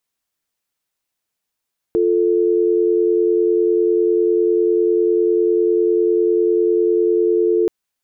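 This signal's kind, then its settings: call progress tone dial tone, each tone -15.5 dBFS 5.73 s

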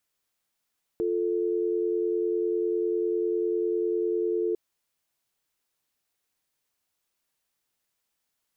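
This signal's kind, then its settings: call progress tone dial tone, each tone -26.5 dBFS 3.55 s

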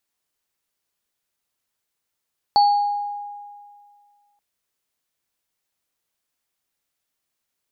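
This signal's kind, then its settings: sine partials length 1.83 s, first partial 820 Hz, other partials 4.45 kHz, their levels -10 dB, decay 2.04 s, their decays 0.66 s, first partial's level -10.5 dB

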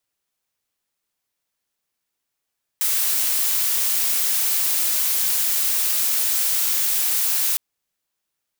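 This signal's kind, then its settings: noise blue, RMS -20.5 dBFS 4.76 s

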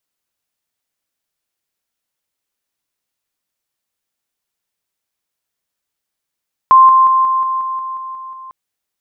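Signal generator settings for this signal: level ladder 1.05 kHz -3 dBFS, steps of -3 dB, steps 10, 0.18 s 0.00 s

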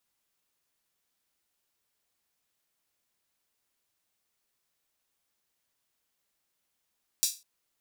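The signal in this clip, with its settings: open hi-hat length 0.20 s, high-pass 5 kHz, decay 0.28 s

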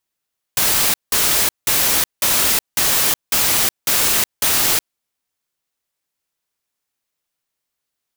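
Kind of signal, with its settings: noise bursts white, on 0.37 s, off 0.18 s, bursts 8, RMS -16 dBFS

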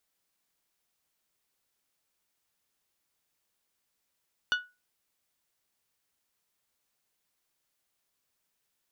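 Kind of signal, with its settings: glass hit bell, lowest mode 1.47 kHz, decay 0.26 s, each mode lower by 5 dB, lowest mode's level -21 dB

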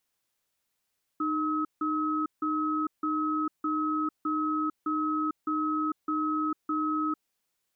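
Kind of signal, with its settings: cadence 307 Hz, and 1.28 kHz, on 0.45 s, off 0.16 s, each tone -28.5 dBFS 5.99 s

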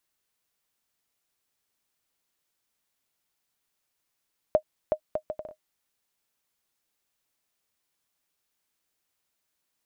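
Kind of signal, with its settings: bouncing ball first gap 0.37 s, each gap 0.63, 618 Hz, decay 79 ms -10 dBFS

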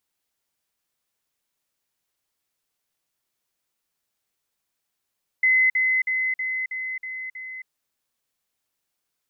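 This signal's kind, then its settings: level ladder 2.04 kHz -15 dBFS, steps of -3 dB, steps 7, 0.27 s 0.05 s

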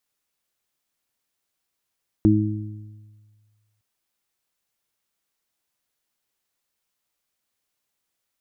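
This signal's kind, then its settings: additive tone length 1.56 s, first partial 106 Hz, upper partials 0.5/4 dB, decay 1.70 s, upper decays 1.08/0.95 s, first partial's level -17 dB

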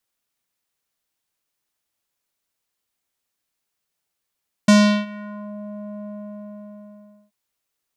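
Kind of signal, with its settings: synth note square G#3 12 dB/octave, low-pass 690 Hz, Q 1.6, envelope 3.5 oct, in 0.86 s, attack 5.9 ms, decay 0.37 s, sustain -24 dB, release 1.25 s, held 1.38 s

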